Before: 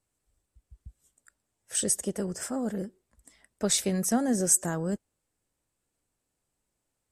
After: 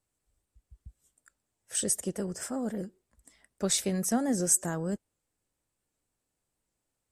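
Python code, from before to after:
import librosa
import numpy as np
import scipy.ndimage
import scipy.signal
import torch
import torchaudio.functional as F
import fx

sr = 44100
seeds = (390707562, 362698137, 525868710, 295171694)

y = fx.record_warp(x, sr, rpm=78.0, depth_cents=100.0)
y = y * librosa.db_to_amplitude(-2.0)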